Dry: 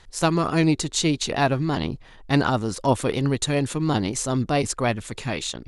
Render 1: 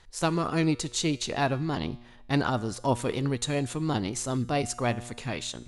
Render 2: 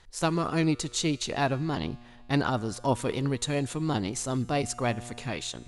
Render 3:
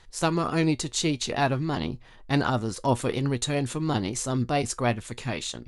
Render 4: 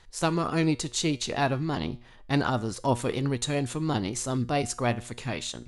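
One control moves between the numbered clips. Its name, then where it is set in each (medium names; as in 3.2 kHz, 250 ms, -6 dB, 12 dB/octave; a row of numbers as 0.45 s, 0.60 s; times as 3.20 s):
feedback comb, decay: 0.89 s, 2 s, 0.15 s, 0.42 s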